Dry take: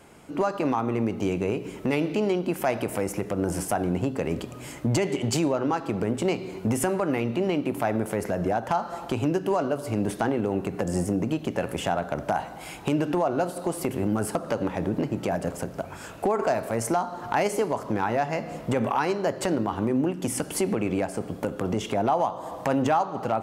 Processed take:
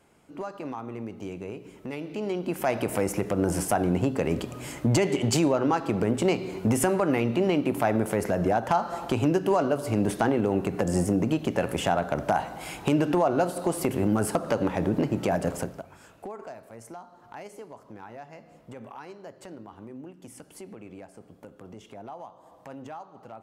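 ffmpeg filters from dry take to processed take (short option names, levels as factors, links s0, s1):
-af "volume=1.19,afade=t=in:st=2.05:d=0.92:silence=0.251189,afade=t=out:st=15.59:d=0.24:silence=0.251189,afade=t=out:st=15.83:d=0.73:silence=0.421697"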